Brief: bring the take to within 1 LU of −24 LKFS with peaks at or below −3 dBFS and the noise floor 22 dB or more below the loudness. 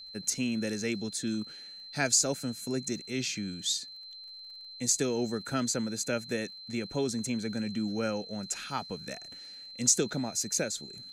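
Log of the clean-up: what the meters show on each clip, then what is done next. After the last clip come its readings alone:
crackle rate 29 per second; interfering tone 4,100 Hz; level of the tone −44 dBFS; integrated loudness −31.0 LKFS; sample peak −9.5 dBFS; target loudness −24.0 LKFS
→ click removal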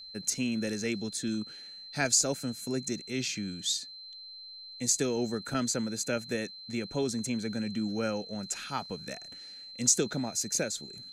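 crackle rate 0.090 per second; interfering tone 4,100 Hz; level of the tone −44 dBFS
→ notch filter 4,100 Hz, Q 30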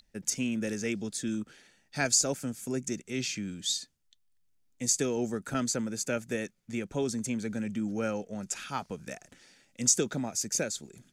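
interfering tone none found; integrated loudness −31.5 LKFS; sample peak −9.5 dBFS; target loudness −24.0 LKFS
→ level +7.5 dB
brickwall limiter −3 dBFS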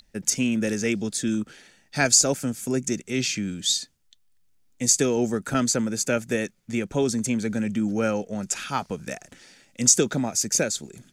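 integrated loudness −24.0 LKFS; sample peak −3.0 dBFS; background noise floor −63 dBFS

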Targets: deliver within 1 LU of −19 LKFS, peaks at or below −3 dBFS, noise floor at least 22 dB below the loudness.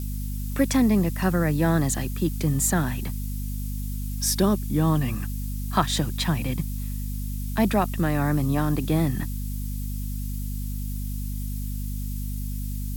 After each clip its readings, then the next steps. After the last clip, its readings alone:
mains hum 50 Hz; hum harmonics up to 250 Hz; level of the hum −27 dBFS; background noise floor −30 dBFS; target noise floor −48 dBFS; integrated loudness −26.0 LKFS; sample peak −6.5 dBFS; target loudness −19.0 LKFS
→ mains-hum notches 50/100/150/200/250 Hz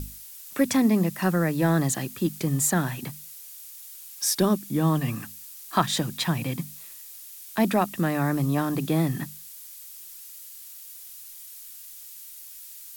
mains hum none found; background noise floor −44 dBFS; target noise floor −47 dBFS
→ noise reduction from a noise print 6 dB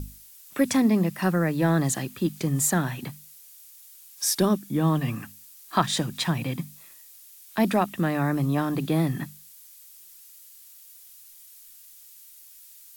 background noise floor −50 dBFS; integrated loudness −25.5 LKFS; sample peak −7.0 dBFS; target loudness −19.0 LKFS
→ level +6.5 dB
brickwall limiter −3 dBFS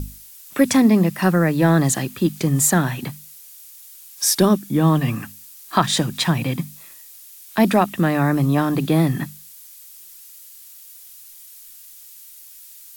integrated loudness −19.0 LKFS; sample peak −3.0 dBFS; background noise floor −43 dBFS

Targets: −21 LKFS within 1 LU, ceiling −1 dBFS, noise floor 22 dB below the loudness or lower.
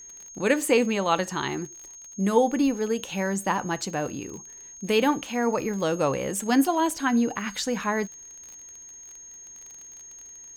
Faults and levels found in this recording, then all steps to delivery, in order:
crackle rate 31 per second; interfering tone 6,500 Hz; level of the tone −42 dBFS; integrated loudness −25.5 LKFS; sample peak −7.5 dBFS; target loudness −21.0 LKFS
→ click removal
notch filter 6,500 Hz, Q 30
level +4.5 dB

